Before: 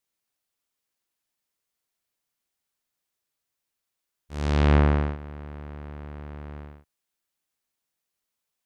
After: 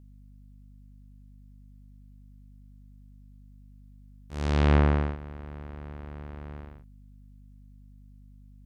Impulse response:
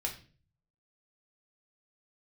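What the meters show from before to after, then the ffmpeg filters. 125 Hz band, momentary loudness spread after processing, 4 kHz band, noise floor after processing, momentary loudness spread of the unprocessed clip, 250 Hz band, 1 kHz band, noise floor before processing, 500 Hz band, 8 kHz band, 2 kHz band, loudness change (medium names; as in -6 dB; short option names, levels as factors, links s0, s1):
-2.0 dB, 20 LU, -2.0 dB, -51 dBFS, 20 LU, -2.0 dB, -2.0 dB, -84 dBFS, -2.0 dB, no reading, -2.0 dB, -6.0 dB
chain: -af "aeval=exprs='val(0)+0.00398*(sin(2*PI*50*n/s)+sin(2*PI*2*50*n/s)/2+sin(2*PI*3*50*n/s)/3+sin(2*PI*4*50*n/s)/4+sin(2*PI*5*50*n/s)/5)':c=same,volume=0.794"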